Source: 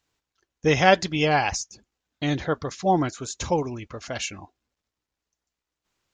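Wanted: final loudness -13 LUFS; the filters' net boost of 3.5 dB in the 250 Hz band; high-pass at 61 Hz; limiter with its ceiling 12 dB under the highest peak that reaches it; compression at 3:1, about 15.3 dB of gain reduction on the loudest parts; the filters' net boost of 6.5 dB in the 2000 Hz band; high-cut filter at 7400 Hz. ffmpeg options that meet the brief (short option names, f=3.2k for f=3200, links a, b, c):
-af "highpass=61,lowpass=7.4k,equalizer=f=250:t=o:g=5,equalizer=f=2k:t=o:g=8,acompressor=threshold=-29dB:ratio=3,volume=22.5dB,alimiter=limit=-2dB:level=0:latency=1"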